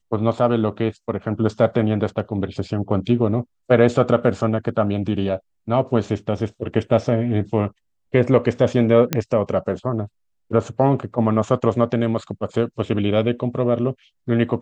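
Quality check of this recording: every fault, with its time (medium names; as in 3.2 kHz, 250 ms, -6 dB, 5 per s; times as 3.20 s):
9.13 s: pop -4 dBFS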